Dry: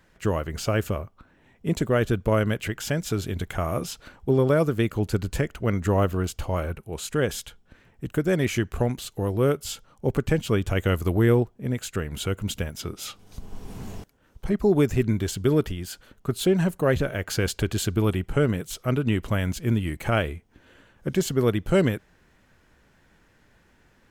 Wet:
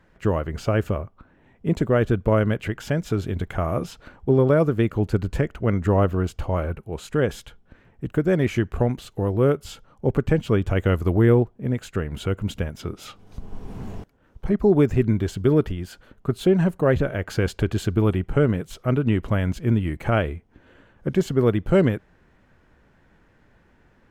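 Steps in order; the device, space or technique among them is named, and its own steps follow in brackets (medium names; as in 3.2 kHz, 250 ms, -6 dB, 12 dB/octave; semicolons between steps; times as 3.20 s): through cloth (treble shelf 3.3 kHz -14 dB); trim +3 dB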